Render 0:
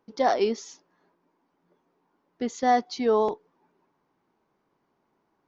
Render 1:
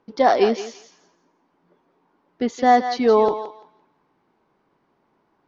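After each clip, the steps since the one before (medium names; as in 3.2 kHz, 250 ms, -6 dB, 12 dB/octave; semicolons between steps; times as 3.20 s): low-pass 4.8 kHz 12 dB/octave; thinning echo 170 ms, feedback 25%, high-pass 760 Hz, level -8 dB; trim +6.5 dB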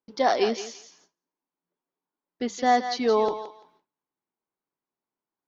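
gate with hold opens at -45 dBFS; treble shelf 3 kHz +10 dB; hum notches 50/100/150/200 Hz; trim -6.5 dB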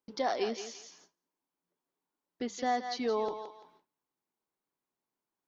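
compression 1.5:1, threshold -45 dBFS, peak gain reduction 10.5 dB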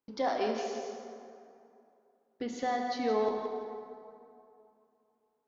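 treble shelf 3.8 kHz -7 dB; plate-style reverb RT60 2.7 s, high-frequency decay 0.55×, DRR 2.5 dB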